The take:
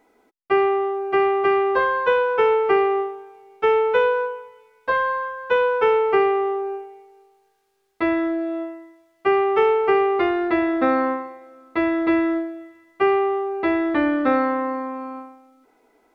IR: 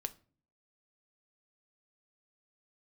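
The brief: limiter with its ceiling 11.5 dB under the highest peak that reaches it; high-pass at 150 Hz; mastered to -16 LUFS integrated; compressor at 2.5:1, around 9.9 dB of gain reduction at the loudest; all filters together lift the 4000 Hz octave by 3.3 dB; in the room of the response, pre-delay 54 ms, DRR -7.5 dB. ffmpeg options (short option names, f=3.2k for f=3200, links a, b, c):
-filter_complex "[0:a]highpass=150,equalizer=f=4k:t=o:g=5,acompressor=threshold=-29dB:ratio=2.5,alimiter=level_in=3dB:limit=-24dB:level=0:latency=1,volume=-3dB,asplit=2[a][b];[1:a]atrim=start_sample=2205,adelay=54[c];[b][c]afir=irnorm=-1:irlink=0,volume=8.5dB[d];[a][d]amix=inputs=2:normalize=0,volume=9dB"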